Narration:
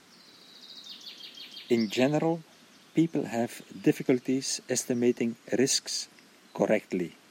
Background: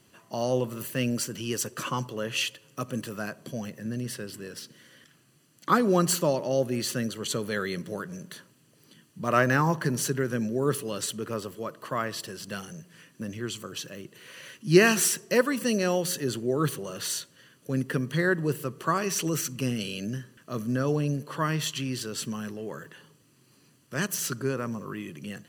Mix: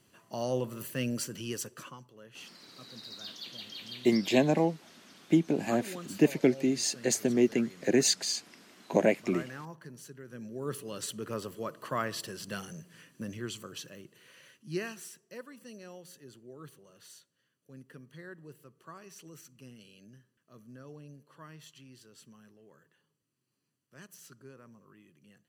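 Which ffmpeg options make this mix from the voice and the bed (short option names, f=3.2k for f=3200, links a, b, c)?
-filter_complex "[0:a]adelay=2350,volume=0.5dB[a];[1:a]volume=13dB,afade=t=out:st=1.45:d=0.53:silence=0.16788,afade=t=in:st=10.23:d=1.37:silence=0.125893,afade=t=out:st=12.96:d=2.01:silence=0.1[b];[a][b]amix=inputs=2:normalize=0"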